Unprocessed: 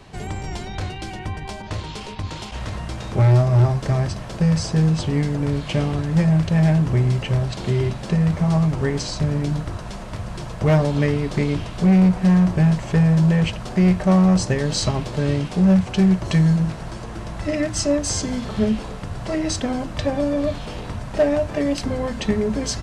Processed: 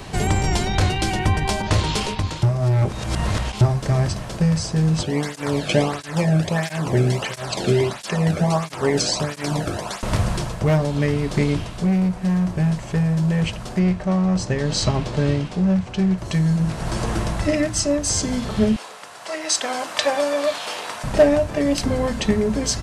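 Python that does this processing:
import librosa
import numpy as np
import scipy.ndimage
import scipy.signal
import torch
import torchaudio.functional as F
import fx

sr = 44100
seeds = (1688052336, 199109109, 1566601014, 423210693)

y = fx.flanger_cancel(x, sr, hz=1.5, depth_ms=1.1, at=(5.03, 10.03))
y = fx.air_absorb(y, sr, metres=58.0, at=(13.79, 16.18))
y = fx.highpass(y, sr, hz=740.0, slope=12, at=(18.76, 21.04))
y = fx.edit(y, sr, fx.reverse_span(start_s=2.43, length_s=1.18), tone=tone)
y = fx.high_shelf(y, sr, hz=8300.0, db=9.0)
y = fx.rider(y, sr, range_db=10, speed_s=0.5)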